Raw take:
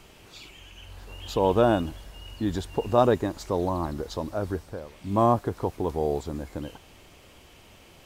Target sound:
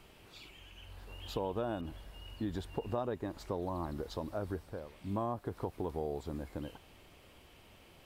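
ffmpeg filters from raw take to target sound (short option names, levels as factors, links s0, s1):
-filter_complex "[0:a]equalizer=f=6500:w=1.8:g=-6,acompressor=threshold=0.0501:ratio=6,asettb=1/sr,asplit=3[s0][s1][s2];[s0]atrim=end=1.814[s3];[s1]atrim=start=1.81:end=3.62,asetpts=PTS-STARTPTS,afade=t=in:d=0.004:c=qsin,afade=t=out:st=1.806:d=0.004:c=qsin,adynamicequalizer=threshold=0.002:dfrequency=3700:dqfactor=0.7:tfrequency=3700:tqfactor=0.7:attack=5:release=100:ratio=0.375:range=1.5:mode=cutabove:tftype=highshelf[s4];[s2]atrim=start=3.616[s5];[s3][s4]acrossfade=d=0.004:c1=hsin:c2=qsin[s6];[s6][s5]acrossfade=d=0.004:c1=qsin:c2=hsin,volume=0.473"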